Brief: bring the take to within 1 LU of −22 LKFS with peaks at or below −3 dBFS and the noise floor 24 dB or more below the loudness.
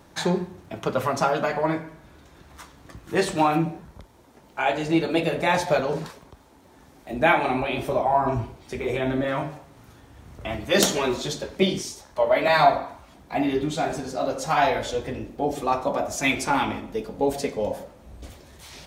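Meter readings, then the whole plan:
crackle rate 36 per second; integrated loudness −24.5 LKFS; sample peak −1.5 dBFS; target loudness −22.0 LKFS
→ click removal
level +2.5 dB
brickwall limiter −3 dBFS

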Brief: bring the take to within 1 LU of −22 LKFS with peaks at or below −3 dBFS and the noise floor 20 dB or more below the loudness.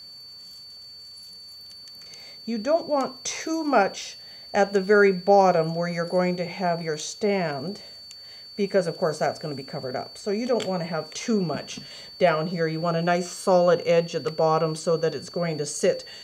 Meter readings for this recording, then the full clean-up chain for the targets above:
crackle rate 27 per second; interfering tone 4,500 Hz; level of the tone −41 dBFS; integrated loudness −24.5 LKFS; sample peak −7.0 dBFS; target loudness −22.0 LKFS
→ click removal
notch filter 4,500 Hz, Q 30
level +2.5 dB

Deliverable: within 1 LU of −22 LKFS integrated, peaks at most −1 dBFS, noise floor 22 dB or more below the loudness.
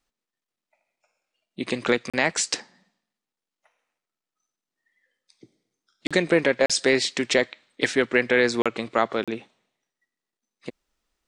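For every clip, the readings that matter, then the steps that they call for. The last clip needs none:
number of dropouts 5; longest dropout 36 ms; integrated loudness −23.5 LKFS; sample peak −5.0 dBFS; target loudness −22.0 LKFS
→ repair the gap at 0:02.10/0:06.07/0:06.66/0:08.62/0:09.24, 36 ms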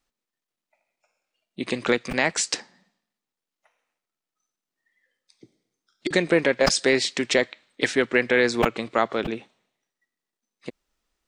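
number of dropouts 0; integrated loudness −23.0 LKFS; sample peak −4.0 dBFS; target loudness −22.0 LKFS
→ level +1 dB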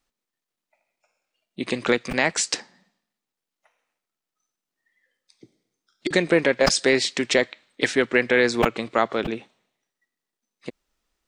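integrated loudness −22.0 LKFS; sample peak −3.0 dBFS; background noise floor −87 dBFS

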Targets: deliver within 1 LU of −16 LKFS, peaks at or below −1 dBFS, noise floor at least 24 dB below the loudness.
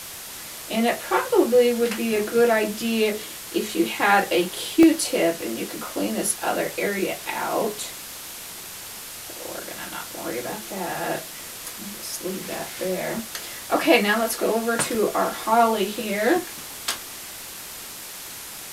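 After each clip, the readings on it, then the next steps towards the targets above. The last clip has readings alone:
number of dropouts 7; longest dropout 1.5 ms; background noise floor −37 dBFS; target noise floor −48 dBFS; integrated loudness −23.5 LKFS; sample peak −3.5 dBFS; target loudness −16.0 LKFS
→ repair the gap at 0:02.16/0:04.83/0:05.41/0:11.67/0:12.59/0:13.19/0:14.95, 1.5 ms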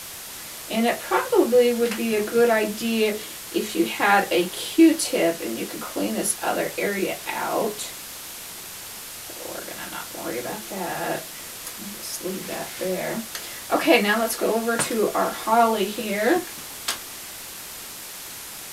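number of dropouts 0; background noise floor −37 dBFS; target noise floor −48 dBFS
→ broadband denoise 11 dB, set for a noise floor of −37 dBFS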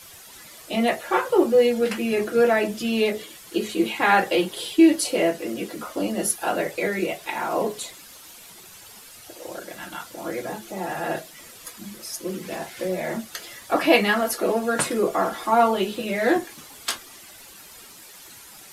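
background noise floor −45 dBFS; target noise floor −48 dBFS
→ broadband denoise 6 dB, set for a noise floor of −45 dBFS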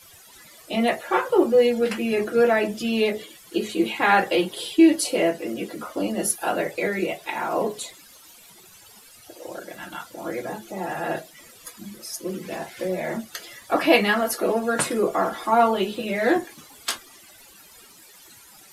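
background noise floor −50 dBFS; integrated loudness −23.5 LKFS; sample peak −3.5 dBFS; target loudness −16.0 LKFS
→ level +7.5 dB
brickwall limiter −1 dBFS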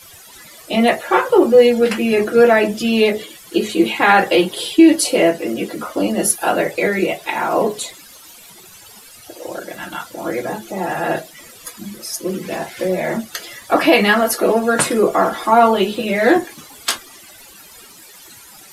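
integrated loudness −16.5 LKFS; sample peak −1.0 dBFS; background noise floor −42 dBFS

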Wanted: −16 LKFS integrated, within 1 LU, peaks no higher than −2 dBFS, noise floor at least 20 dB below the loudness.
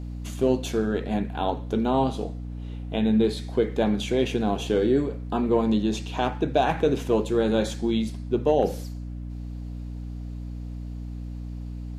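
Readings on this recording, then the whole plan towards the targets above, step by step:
mains hum 60 Hz; hum harmonics up to 300 Hz; level of the hum −32 dBFS; integrated loudness −25.0 LKFS; sample peak −9.0 dBFS; target loudness −16.0 LKFS
→ mains-hum notches 60/120/180/240/300 Hz
level +9 dB
brickwall limiter −2 dBFS

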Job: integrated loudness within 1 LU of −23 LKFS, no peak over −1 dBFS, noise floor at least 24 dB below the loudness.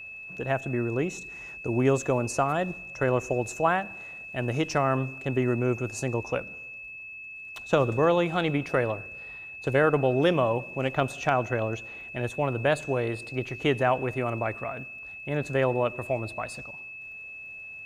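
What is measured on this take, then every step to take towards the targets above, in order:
crackle rate 22 per second; interfering tone 2,600 Hz; level of the tone −39 dBFS; integrated loudness −27.5 LKFS; sample peak −9.0 dBFS; target loudness −23.0 LKFS
→ click removal
notch filter 2,600 Hz, Q 30
level +4.5 dB

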